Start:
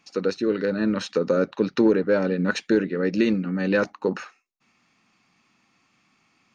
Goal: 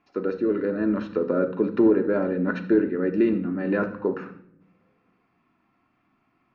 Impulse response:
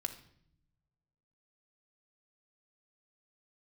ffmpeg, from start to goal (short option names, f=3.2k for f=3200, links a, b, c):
-filter_complex "[0:a]lowpass=1.5k[a];[1:a]atrim=start_sample=2205[b];[a][b]afir=irnorm=-1:irlink=0"